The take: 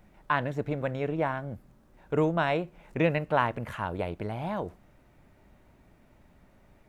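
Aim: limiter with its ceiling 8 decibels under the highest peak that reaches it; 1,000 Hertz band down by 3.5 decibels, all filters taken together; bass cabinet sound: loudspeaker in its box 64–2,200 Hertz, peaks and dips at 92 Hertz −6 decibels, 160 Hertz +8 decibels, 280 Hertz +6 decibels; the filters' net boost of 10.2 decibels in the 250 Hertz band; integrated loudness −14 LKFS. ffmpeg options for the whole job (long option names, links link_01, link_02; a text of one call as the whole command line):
ffmpeg -i in.wav -af "equalizer=frequency=250:width_type=o:gain=8.5,equalizer=frequency=1000:width_type=o:gain=-5,alimiter=limit=-18.5dB:level=0:latency=1,highpass=frequency=64:width=0.5412,highpass=frequency=64:width=1.3066,equalizer=frequency=92:width_type=q:width=4:gain=-6,equalizer=frequency=160:width_type=q:width=4:gain=8,equalizer=frequency=280:width_type=q:width=4:gain=6,lowpass=frequency=2200:width=0.5412,lowpass=frequency=2200:width=1.3066,volume=13.5dB" out.wav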